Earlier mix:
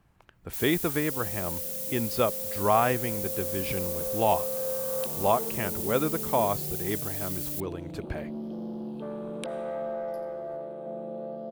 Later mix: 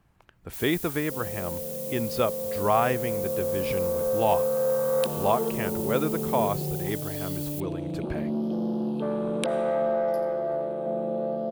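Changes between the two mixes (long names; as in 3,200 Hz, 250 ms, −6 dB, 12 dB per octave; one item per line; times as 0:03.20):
first sound −3.5 dB
second sound +8.0 dB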